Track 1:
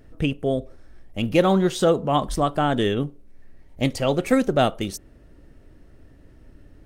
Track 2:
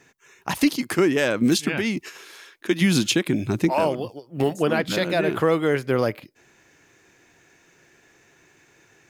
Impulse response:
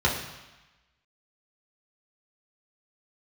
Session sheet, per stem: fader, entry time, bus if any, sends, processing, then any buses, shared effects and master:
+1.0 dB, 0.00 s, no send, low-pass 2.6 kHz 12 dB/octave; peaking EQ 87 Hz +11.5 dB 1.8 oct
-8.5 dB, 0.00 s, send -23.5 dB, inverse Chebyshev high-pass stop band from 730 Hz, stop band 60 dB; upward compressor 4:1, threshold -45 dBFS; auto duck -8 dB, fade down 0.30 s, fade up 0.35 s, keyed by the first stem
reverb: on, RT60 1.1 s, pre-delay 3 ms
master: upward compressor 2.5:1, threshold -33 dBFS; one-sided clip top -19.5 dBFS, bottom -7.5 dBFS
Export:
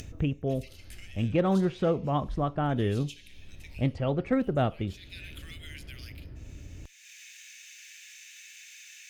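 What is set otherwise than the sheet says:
stem 1 +1.0 dB -> -9.0 dB; stem 2 -8.5 dB -> -15.0 dB

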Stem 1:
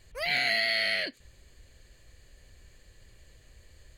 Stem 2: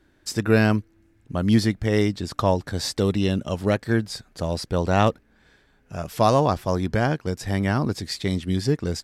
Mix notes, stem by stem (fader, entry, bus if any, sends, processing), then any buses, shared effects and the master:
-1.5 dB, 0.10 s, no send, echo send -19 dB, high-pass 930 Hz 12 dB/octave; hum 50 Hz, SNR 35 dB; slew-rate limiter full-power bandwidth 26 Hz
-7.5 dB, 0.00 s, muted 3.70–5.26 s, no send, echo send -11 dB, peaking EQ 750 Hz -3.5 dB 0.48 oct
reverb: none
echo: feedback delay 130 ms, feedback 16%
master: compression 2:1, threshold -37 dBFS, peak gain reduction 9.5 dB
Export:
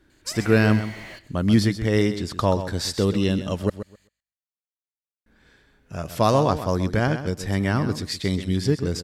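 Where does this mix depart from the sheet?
stem 2 -7.5 dB -> +0.5 dB; master: missing compression 2:1, threshold -37 dBFS, peak gain reduction 9.5 dB

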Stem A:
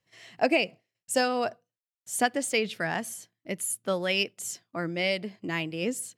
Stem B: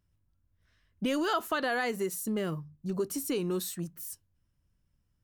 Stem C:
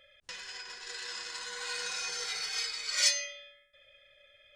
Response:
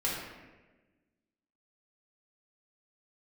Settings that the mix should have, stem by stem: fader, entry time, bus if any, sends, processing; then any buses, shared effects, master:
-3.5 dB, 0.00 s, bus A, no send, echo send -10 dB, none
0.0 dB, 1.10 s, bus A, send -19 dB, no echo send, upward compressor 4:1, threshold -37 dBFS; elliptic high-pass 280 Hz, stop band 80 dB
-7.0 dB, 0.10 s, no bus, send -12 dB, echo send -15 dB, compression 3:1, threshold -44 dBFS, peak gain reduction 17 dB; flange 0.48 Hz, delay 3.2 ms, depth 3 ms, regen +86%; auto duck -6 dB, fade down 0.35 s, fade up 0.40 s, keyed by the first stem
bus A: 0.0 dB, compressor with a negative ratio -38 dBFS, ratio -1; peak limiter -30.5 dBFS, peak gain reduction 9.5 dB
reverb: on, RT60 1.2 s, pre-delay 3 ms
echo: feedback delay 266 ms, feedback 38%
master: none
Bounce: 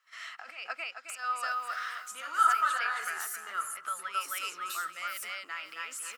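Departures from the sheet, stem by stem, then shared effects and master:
stem B: missing elliptic high-pass 280 Hz, stop band 80 dB; stem C -7.0 dB -> -17.0 dB; master: extra resonant high-pass 1.3 kHz, resonance Q 11

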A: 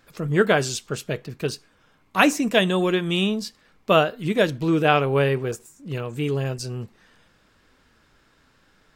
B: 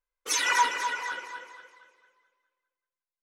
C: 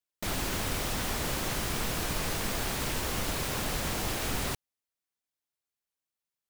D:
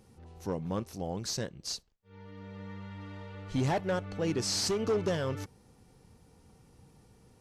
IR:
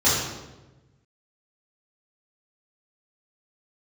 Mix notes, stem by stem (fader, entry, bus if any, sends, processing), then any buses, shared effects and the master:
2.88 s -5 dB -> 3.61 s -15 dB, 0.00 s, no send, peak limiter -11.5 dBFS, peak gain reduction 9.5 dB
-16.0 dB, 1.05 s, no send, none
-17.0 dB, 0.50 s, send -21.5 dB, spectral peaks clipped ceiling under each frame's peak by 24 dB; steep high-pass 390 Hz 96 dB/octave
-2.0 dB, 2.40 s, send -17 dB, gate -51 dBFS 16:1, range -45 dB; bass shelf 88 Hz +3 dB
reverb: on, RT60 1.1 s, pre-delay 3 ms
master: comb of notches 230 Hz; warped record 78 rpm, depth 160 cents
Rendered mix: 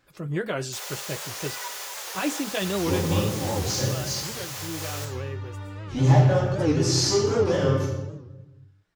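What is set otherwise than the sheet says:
stem C -17.0 dB -> -8.0 dB; reverb return +7.5 dB

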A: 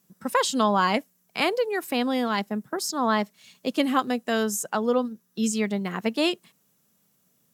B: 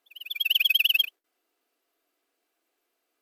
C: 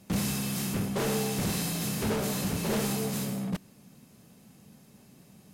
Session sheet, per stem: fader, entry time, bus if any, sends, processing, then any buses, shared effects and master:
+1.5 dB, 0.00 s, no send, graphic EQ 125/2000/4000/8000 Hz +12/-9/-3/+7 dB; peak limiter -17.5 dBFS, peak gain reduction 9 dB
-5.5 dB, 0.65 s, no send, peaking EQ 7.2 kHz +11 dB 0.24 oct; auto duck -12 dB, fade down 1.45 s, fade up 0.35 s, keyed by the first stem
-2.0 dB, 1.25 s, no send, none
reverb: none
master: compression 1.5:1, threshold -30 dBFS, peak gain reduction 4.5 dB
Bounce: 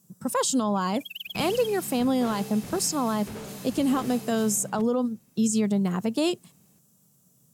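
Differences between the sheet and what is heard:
stem C -2.0 dB -> -9.0 dB; master: missing compression 1.5:1, threshold -30 dBFS, peak gain reduction 4.5 dB

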